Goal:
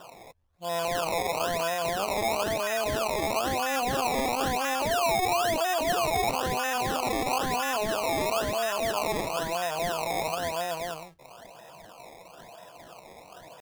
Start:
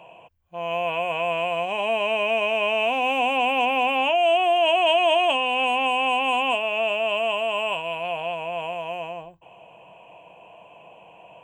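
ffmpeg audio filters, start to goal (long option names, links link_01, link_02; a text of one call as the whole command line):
ffmpeg -i in.wav -af "acrusher=samples=20:mix=1:aa=0.000001:lfo=1:lforange=20:lforate=1.2,alimiter=limit=-20dB:level=0:latency=1:release=65,atempo=0.84" out.wav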